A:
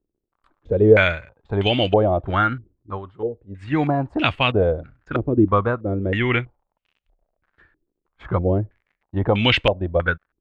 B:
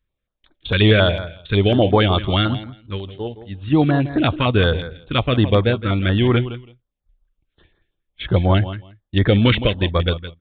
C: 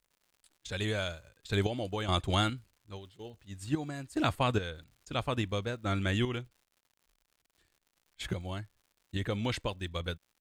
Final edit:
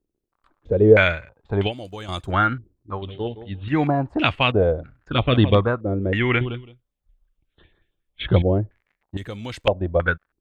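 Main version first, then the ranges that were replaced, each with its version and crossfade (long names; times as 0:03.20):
A
0:01.68–0:02.29: punch in from C, crossfade 0.10 s
0:03.02–0:03.68: punch in from B
0:05.14–0:05.60: punch in from B, crossfade 0.16 s
0:06.41–0:08.42: punch in from B
0:09.17–0:09.67: punch in from C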